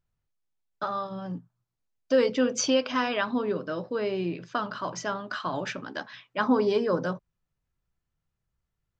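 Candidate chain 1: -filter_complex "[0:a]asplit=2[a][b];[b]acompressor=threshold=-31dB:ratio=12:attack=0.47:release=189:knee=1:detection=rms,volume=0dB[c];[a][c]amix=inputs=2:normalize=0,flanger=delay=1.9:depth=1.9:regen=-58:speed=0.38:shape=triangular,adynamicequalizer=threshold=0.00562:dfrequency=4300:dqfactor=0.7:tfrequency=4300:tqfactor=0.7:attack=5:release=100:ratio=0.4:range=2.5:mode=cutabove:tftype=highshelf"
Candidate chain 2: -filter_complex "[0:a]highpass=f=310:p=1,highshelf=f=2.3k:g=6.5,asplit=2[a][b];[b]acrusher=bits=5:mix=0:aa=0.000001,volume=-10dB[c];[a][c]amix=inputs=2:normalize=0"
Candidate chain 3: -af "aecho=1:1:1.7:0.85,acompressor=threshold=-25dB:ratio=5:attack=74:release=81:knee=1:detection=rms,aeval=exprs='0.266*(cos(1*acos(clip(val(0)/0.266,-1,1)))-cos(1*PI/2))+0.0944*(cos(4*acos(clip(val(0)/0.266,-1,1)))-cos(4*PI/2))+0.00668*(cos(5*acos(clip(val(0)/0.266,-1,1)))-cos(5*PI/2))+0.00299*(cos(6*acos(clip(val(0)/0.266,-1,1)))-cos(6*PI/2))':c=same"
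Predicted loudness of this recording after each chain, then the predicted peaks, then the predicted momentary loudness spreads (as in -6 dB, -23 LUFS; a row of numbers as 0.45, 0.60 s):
-31.0, -26.0, -26.5 LUFS; -14.5, -7.5, -8.5 dBFS; 10, 13, 9 LU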